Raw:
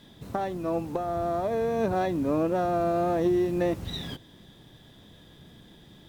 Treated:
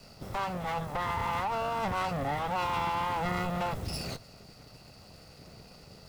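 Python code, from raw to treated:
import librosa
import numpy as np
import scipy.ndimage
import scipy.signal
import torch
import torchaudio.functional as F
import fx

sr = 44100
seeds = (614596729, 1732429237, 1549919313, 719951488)

y = fx.lower_of_two(x, sr, delay_ms=1.5)
y = 10.0 ** (-28.5 / 20.0) * np.tanh(y / 10.0 ** (-28.5 / 20.0))
y = fx.formant_shift(y, sr, semitones=5)
y = y * librosa.db_to_amplitude(2.0)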